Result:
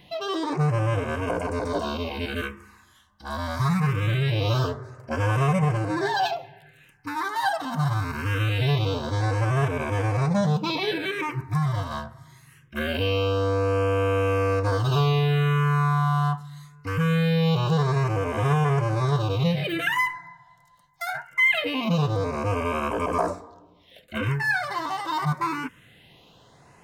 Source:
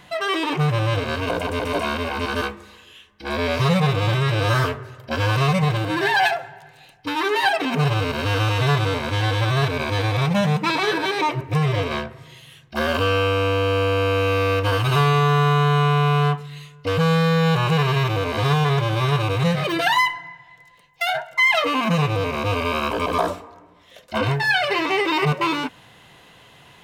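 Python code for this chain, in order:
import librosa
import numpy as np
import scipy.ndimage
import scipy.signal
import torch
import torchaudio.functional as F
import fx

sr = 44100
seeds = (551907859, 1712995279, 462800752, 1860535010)

y = fx.phaser_stages(x, sr, stages=4, low_hz=410.0, high_hz=4200.0, hz=0.23, feedback_pct=5)
y = F.gain(torch.from_numpy(y), -2.5).numpy()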